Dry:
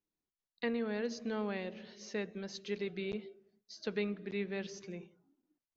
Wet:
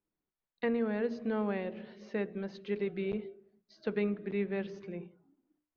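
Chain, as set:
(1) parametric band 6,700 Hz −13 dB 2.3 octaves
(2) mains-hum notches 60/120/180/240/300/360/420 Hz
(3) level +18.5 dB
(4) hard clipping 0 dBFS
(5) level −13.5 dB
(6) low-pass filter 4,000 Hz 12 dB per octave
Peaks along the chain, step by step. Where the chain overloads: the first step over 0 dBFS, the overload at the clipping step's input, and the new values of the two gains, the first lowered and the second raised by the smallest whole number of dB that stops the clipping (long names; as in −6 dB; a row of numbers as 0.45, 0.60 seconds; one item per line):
−24.0, −24.0, −5.5, −5.5, −19.0, −19.5 dBFS
no step passes full scale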